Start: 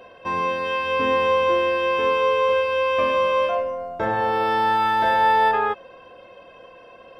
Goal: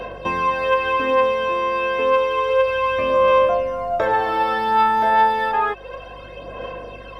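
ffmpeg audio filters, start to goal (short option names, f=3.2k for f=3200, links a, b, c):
-filter_complex "[0:a]acrossover=split=320|2300[a][b][c];[a]acompressor=threshold=-48dB:ratio=4[d];[b]acompressor=threshold=-28dB:ratio=4[e];[c]acompressor=threshold=-47dB:ratio=4[f];[d][e][f]amix=inputs=3:normalize=0,aeval=exprs='val(0)+0.00158*(sin(2*PI*50*n/s)+sin(2*PI*2*50*n/s)/2+sin(2*PI*3*50*n/s)/3+sin(2*PI*4*50*n/s)/4+sin(2*PI*5*50*n/s)/5)':c=same,aphaser=in_gain=1:out_gain=1:delay=4.7:decay=0.5:speed=0.3:type=sinusoidal,volume=8.5dB"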